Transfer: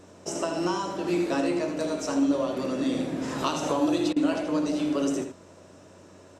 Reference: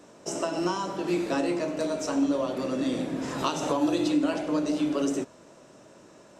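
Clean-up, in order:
hum removal 92.6 Hz, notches 5
repair the gap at 0:04.13, 32 ms
echo removal 80 ms −8.5 dB

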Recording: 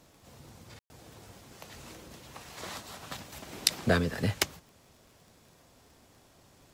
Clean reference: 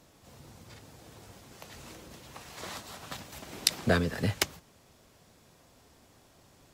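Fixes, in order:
click removal
ambience match 0:00.79–0:00.90

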